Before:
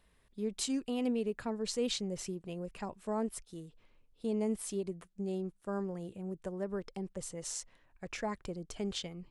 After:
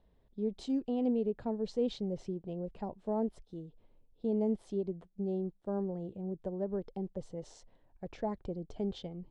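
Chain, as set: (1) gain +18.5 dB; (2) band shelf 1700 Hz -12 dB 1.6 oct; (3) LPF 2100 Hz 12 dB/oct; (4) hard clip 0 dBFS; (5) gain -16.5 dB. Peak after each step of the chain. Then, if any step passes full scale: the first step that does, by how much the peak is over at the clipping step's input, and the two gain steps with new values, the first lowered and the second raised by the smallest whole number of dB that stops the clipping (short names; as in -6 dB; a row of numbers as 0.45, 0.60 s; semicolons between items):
-2.5, -3.5, -5.0, -5.0, -21.5 dBFS; no overload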